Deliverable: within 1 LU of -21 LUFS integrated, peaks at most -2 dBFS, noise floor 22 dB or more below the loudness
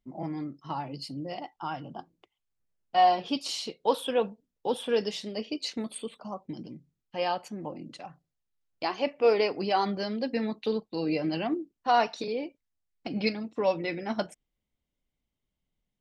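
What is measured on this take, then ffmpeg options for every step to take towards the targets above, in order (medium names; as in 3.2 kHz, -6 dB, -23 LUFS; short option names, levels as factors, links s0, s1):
loudness -30.0 LUFS; peak level -12.0 dBFS; loudness target -21.0 LUFS
-> -af "volume=2.82"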